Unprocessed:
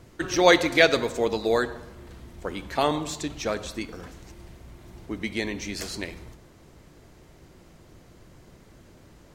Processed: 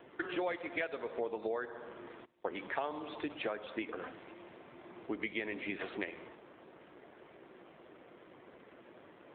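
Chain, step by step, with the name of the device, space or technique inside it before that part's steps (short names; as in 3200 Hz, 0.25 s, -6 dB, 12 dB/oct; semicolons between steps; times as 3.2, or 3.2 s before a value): 2.25–3.44 gate with hold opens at -34 dBFS; voicemail (BPF 370–3100 Hz; compressor 10:1, threshold -36 dBFS, peak gain reduction 23 dB; gain +3.5 dB; AMR-NB 7.4 kbps 8000 Hz)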